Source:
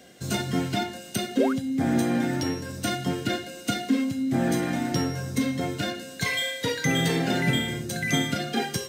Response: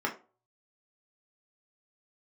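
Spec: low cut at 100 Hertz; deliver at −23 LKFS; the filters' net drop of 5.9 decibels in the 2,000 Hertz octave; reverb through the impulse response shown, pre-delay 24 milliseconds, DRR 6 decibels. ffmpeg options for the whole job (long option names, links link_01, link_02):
-filter_complex "[0:a]highpass=100,equalizer=frequency=2000:width_type=o:gain=-7,asplit=2[link_01][link_02];[1:a]atrim=start_sample=2205,adelay=24[link_03];[link_02][link_03]afir=irnorm=-1:irlink=0,volume=-14dB[link_04];[link_01][link_04]amix=inputs=2:normalize=0,volume=4dB"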